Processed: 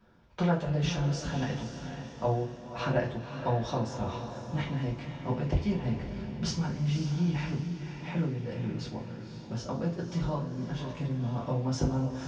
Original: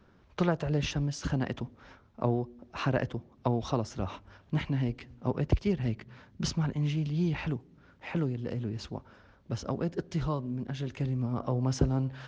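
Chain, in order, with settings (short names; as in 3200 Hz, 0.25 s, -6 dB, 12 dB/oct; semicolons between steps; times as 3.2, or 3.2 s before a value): diffused feedback echo 0.533 s, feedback 44%, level -8.5 dB; two-slope reverb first 0.27 s, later 3.1 s, from -22 dB, DRR -5 dB; gain -6.5 dB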